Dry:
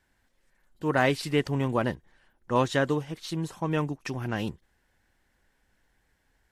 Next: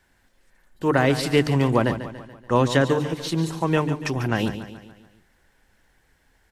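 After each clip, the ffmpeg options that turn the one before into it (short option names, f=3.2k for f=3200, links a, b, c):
-filter_complex "[0:a]bandreject=f=50:t=h:w=6,bandreject=f=100:t=h:w=6,bandreject=f=150:t=h:w=6,bandreject=f=200:t=h:w=6,bandreject=f=250:t=h:w=6,bandreject=f=300:t=h:w=6,acrossover=split=420[a][b];[b]acompressor=threshold=-26dB:ratio=6[c];[a][c]amix=inputs=2:normalize=0,asplit=2[d][e];[e]aecho=0:1:143|286|429|572|715:0.266|0.136|0.0692|0.0353|0.018[f];[d][f]amix=inputs=2:normalize=0,volume=7.5dB"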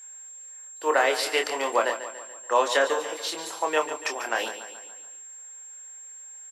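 -filter_complex "[0:a]aeval=exprs='val(0)+0.00631*sin(2*PI*7500*n/s)':c=same,highpass=f=490:w=0.5412,highpass=f=490:w=1.3066,asplit=2[a][b];[b]adelay=26,volume=-6dB[c];[a][c]amix=inputs=2:normalize=0"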